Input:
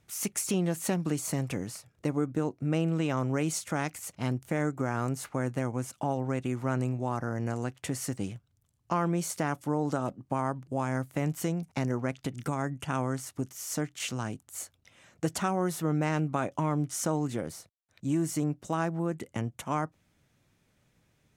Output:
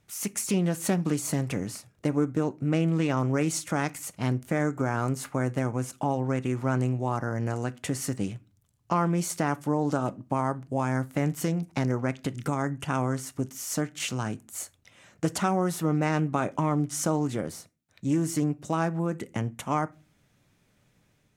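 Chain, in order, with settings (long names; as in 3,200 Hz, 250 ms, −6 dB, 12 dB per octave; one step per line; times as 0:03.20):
automatic gain control gain up to 3 dB
on a send at −15 dB: convolution reverb RT60 0.30 s, pre-delay 4 ms
on the sum: highs frequency-modulated by the lows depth 0.12 ms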